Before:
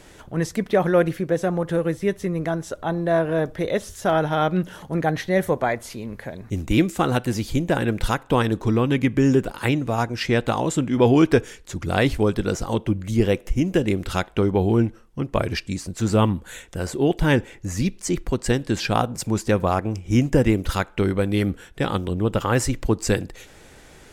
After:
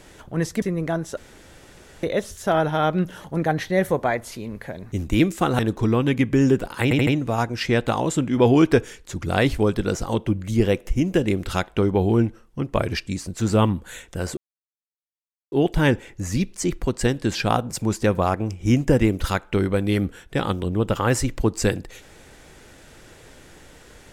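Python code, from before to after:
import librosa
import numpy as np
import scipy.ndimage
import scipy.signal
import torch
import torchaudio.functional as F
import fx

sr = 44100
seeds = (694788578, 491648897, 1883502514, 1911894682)

y = fx.edit(x, sr, fx.cut(start_s=0.62, length_s=1.58),
    fx.room_tone_fill(start_s=2.75, length_s=0.86),
    fx.cut(start_s=7.17, length_s=1.26),
    fx.stutter(start_s=9.67, slice_s=0.08, count=4),
    fx.insert_silence(at_s=16.97, length_s=1.15), tone=tone)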